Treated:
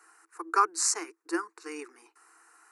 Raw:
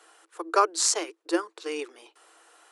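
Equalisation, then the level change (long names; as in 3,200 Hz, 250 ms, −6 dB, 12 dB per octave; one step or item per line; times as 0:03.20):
phaser with its sweep stopped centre 1,400 Hz, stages 4
0.0 dB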